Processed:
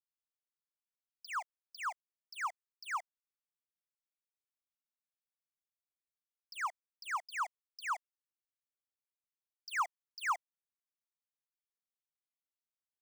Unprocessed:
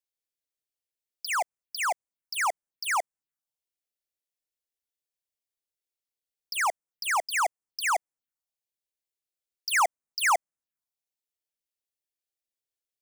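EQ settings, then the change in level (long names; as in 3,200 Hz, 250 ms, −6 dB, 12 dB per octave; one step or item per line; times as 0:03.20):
four-pole ladder high-pass 970 Hz, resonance 55%
parametric band 12,000 Hz −14 dB 0.53 octaves
−5.5 dB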